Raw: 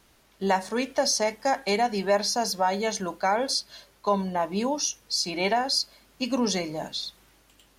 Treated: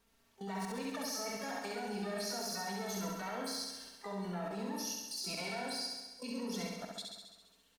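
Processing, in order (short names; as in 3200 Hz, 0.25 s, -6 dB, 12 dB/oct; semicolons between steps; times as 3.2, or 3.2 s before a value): Doppler pass-by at 2.45, 5 m/s, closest 2.3 m; comb 4.4 ms, depth 83%; reverse; compressor 12:1, threshold -35 dBFS, peak gain reduction 19 dB; reverse; harmoniser +12 st -9 dB; Schroeder reverb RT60 0.39 s, combs from 30 ms, DRR 7 dB; level quantiser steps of 16 dB; on a send: flutter echo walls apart 11.5 m, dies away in 1.2 s; on the sum: gain +6 dB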